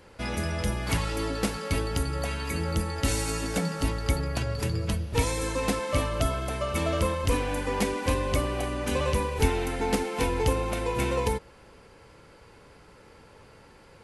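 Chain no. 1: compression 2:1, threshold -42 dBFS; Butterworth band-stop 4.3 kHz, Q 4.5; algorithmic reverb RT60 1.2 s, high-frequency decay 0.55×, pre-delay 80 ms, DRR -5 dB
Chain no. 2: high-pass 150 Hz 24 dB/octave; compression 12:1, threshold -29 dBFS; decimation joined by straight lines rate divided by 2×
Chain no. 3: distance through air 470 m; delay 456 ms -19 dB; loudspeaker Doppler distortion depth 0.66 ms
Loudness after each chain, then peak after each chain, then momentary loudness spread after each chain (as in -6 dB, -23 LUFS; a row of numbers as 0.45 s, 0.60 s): -32.5 LUFS, -34.0 LUFS, -30.0 LUFS; -18.5 dBFS, -17.0 dBFS, -11.5 dBFS; 15 LU, 21 LU, 4 LU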